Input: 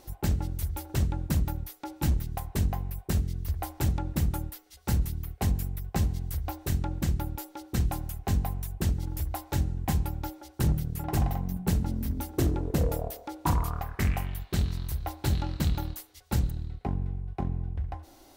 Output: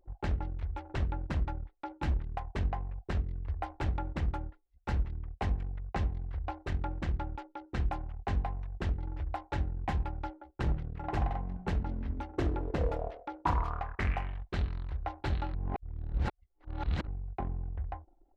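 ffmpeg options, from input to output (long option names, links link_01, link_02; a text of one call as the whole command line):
ffmpeg -i in.wav -filter_complex "[0:a]asplit=3[link_01][link_02][link_03];[link_01]atrim=end=15.542[link_04];[link_02]atrim=start=15.538:end=17.072,asetpts=PTS-STARTPTS,areverse[link_05];[link_03]atrim=start=17.068[link_06];[link_04][link_05]acrossfade=duration=0.004:curve1=hsin:curve2=hsin[link_07];[link_07][link_06]acrossfade=duration=0.004:curve1=hsin:curve2=hsin,lowpass=2400,anlmdn=0.0251,equalizer=frequency=150:width=0.52:gain=-11.5,volume=1.5dB" out.wav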